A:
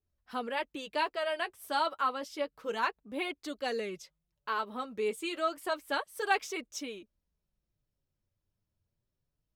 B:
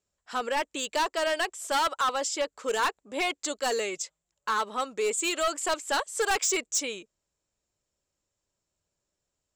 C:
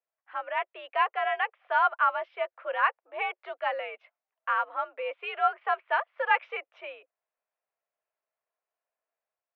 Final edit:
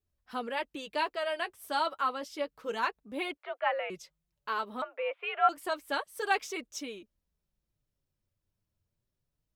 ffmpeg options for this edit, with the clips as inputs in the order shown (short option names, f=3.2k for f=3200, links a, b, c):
-filter_complex "[2:a]asplit=2[a][b];[0:a]asplit=3[c][d][e];[c]atrim=end=3.372[f];[a]atrim=start=3.368:end=3.902[g];[d]atrim=start=3.898:end=4.822[h];[b]atrim=start=4.818:end=5.492[i];[e]atrim=start=5.488[j];[f][g]acrossfade=d=0.004:c1=hsin:c2=hsin[k];[k][h]acrossfade=d=0.004:c1=hsin:c2=hsin[l];[l][i]acrossfade=d=0.004:c1=hsin:c2=hsin[m];[m][j]acrossfade=d=0.004:c1=hsin:c2=hsin"